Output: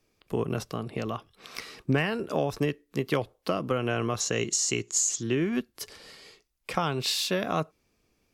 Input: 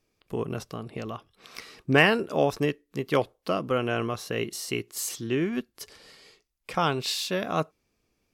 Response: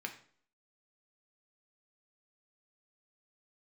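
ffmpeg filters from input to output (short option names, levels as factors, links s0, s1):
-filter_complex "[0:a]asettb=1/sr,asplit=3[s0][s1][s2];[s0]atrim=end=4.204[s3];[s1]atrim=start=4.2:end=5.23,asetpts=PTS-STARTPTS,afade=t=in:d=0.004:c=qsin,afade=t=out:st=1.026:d=0.004:c=qsin,lowpass=f=6900:t=q:w=11[s4];[s2]atrim=start=5.226[s5];[s3][s4]acrossfade=d=0.004:c1=hsin:c2=qsin[s6];[s6][s5]acrossfade=d=0.004:c1=qsin:c2=hsin,acrossover=split=130[s7][s8];[s8]acompressor=threshold=0.0501:ratio=8[s9];[s7][s9]amix=inputs=2:normalize=0,volume=1.41"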